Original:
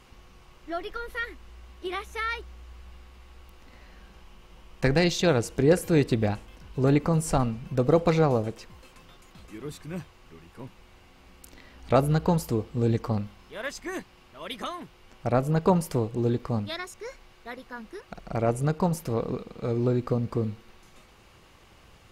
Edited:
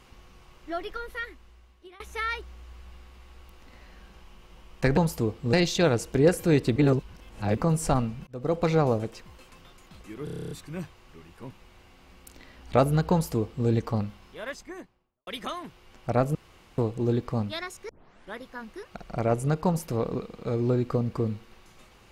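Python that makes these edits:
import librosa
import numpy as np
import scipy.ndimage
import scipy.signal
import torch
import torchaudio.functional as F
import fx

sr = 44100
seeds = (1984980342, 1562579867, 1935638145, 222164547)

y = fx.studio_fade_out(x, sr, start_s=13.4, length_s=1.04)
y = fx.edit(y, sr, fx.fade_out_to(start_s=0.9, length_s=1.1, floor_db=-23.0),
    fx.reverse_span(start_s=6.2, length_s=0.81),
    fx.fade_in_span(start_s=7.71, length_s=0.69, curve='qsin'),
    fx.stutter(start_s=9.68, slice_s=0.03, count=10),
    fx.duplicate(start_s=12.28, length_s=0.56, to_s=4.97),
    fx.room_tone_fill(start_s=15.52, length_s=0.43),
    fx.tape_start(start_s=17.06, length_s=0.49), tone=tone)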